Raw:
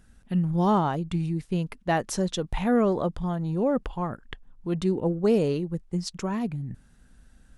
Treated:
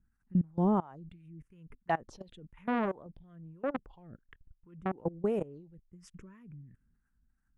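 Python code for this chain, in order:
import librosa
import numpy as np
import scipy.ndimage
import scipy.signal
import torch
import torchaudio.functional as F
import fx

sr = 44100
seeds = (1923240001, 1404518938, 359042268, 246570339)

y = fx.high_shelf(x, sr, hz=3200.0, db=-10.5)
y = fx.level_steps(y, sr, step_db=23)
y = fx.env_phaser(y, sr, low_hz=560.0, high_hz=4500.0, full_db=-26.0)
y = fx.harmonic_tremolo(y, sr, hz=2.9, depth_pct=70, crossover_hz=570.0)
y = fx.transformer_sat(y, sr, knee_hz=880.0, at=(2.32, 4.95))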